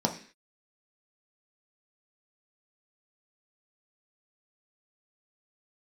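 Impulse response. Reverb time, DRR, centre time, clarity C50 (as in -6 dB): 0.45 s, 1.5 dB, 14 ms, 11.0 dB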